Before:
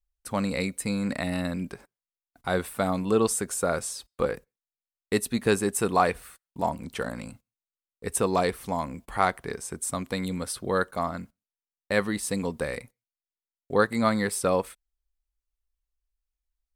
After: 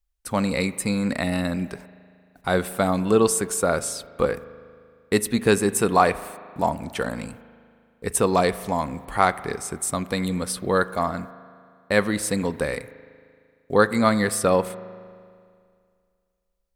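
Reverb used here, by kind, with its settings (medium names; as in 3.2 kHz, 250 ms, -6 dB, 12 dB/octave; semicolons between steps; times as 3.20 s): spring tank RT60 2.2 s, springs 38 ms, chirp 65 ms, DRR 15.5 dB; trim +4.5 dB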